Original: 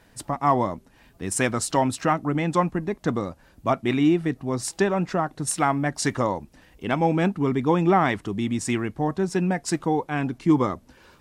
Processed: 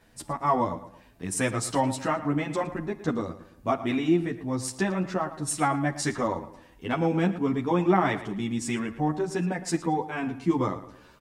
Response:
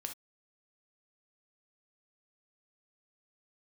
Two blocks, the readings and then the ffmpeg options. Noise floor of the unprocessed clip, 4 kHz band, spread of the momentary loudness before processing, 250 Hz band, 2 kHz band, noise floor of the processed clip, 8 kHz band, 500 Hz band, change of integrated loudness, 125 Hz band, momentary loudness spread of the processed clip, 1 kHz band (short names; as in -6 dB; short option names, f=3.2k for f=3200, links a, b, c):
-57 dBFS, -3.5 dB, 8 LU, -3.5 dB, -3.5 dB, -55 dBFS, -3.5 dB, -3.5 dB, -3.5 dB, -4.0 dB, 8 LU, -3.5 dB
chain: -filter_complex "[0:a]asplit=2[a][b];[b]adelay=112,lowpass=f=4.9k:p=1,volume=-13.5dB,asplit=2[c][d];[d]adelay=112,lowpass=f=4.9k:p=1,volume=0.38,asplit=2[e][f];[f]adelay=112,lowpass=f=4.9k:p=1,volume=0.38,asplit=2[g][h];[h]adelay=112,lowpass=f=4.9k:p=1,volume=0.38[i];[a][c][e][g][i]amix=inputs=5:normalize=0,asplit=2[j][k];[1:a]atrim=start_sample=2205[l];[k][l]afir=irnorm=-1:irlink=0,volume=-7dB[m];[j][m]amix=inputs=2:normalize=0,asplit=2[n][o];[o]adelay=10.2,afreqshift=0.33[p];[n][p]amix=inputs=2:normalize=1,volume=-3dB"